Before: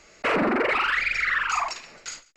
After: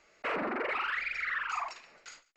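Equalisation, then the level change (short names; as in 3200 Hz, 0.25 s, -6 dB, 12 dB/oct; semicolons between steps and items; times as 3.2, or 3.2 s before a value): low shelf 330 Hz -10 dB; high shelf 4500 Hz -12 dB; -7.5 dB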